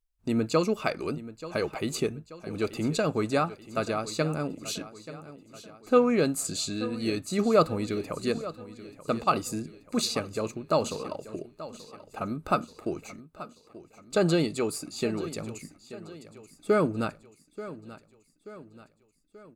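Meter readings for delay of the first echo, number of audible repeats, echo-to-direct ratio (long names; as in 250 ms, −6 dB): 883 ms, 4, −14.5 dB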